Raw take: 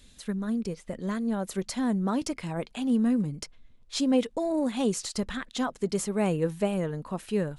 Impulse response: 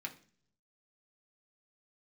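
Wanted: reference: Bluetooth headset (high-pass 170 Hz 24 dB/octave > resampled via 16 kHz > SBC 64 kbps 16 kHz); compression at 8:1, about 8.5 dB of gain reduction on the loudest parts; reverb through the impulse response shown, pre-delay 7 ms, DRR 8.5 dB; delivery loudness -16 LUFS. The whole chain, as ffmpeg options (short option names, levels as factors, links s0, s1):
-filter_complex "[0:a]acompressor=threshold=0.0355:ratio=8,asplit=2[s0][s1];[1:a]atrim=start_sample=2205,adelay=7[s2];[s1][s2]afir=irnorm=-1:irlink=0,volume=0.398[s3];[s0][s3]amix=inputs=2:normalize=0,highpass=f=170:w=0.5412,highpass=f=170:w=1.3066,aresample=16000,aresample=44100,volume=8.91" -ar 16000 -c:a sbc -b:a 64k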